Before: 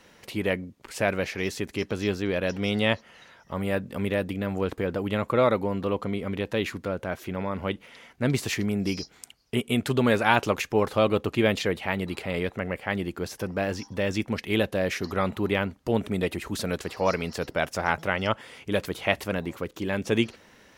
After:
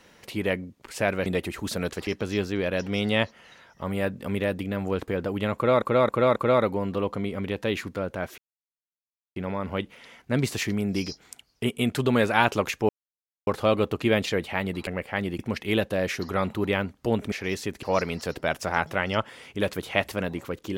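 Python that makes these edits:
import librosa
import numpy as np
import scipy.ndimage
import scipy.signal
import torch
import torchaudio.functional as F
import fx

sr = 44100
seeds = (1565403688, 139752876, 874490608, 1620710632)

y = fx.edit(x, sr, fx.swap(start_s=1.26, length_s=0.51, other_s=16.14, other_length_s=0.81),
    fx.repeat(start_s=5.25, length_s=0.27, count=4),
    fx.insert_silence(at_s=7.27, length_s=0.98),
    fx.insert_silence(at_s=10.8, length_s=0.58),
    fx.cut(start_s=12.2, length_s=0.41),
    fx.cut(start_s=13.13, length_s=1.08), tone=tone)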